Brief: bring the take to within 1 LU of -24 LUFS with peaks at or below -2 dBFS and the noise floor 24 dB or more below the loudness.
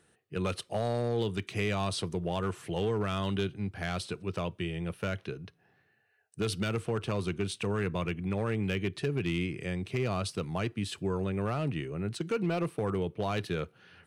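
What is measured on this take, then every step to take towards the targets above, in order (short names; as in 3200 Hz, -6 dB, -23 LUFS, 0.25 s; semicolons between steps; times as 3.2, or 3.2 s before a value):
clipped 0.8%; flat tops at -23.0 dBFS; loudness -33.0 LUFS; peak -23.0 dBFS; loudness target -24.0 LUFS
-> clip repair -23 dBFS; gain +9 dB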